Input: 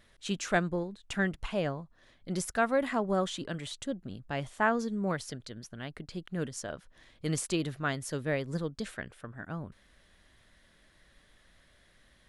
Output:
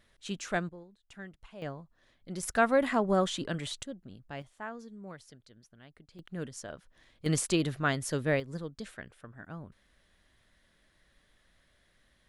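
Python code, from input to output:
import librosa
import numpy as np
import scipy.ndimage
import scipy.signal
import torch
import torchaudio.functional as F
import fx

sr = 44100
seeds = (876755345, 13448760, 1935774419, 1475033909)

y = fx.gain(x, sr, db=fx.steps((0.0, -4.0), (0.69, -16.0), (1.62, -5.5), (2.43, 2.5), (3.83, -7.0), (4.42, -14.0), (6.19, -4.0), (7.26, 3.0), (8.4, -5.0)))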